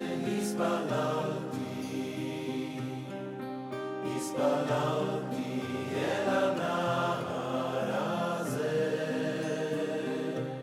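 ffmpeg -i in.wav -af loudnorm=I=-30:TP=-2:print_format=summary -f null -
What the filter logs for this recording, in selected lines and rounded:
Input Integrated:    -32.3 LUFS
Input True Peak:     -16.8 dBTP
Input LRA:             2.8 LU
Input Threshold:     -42.3 LUFS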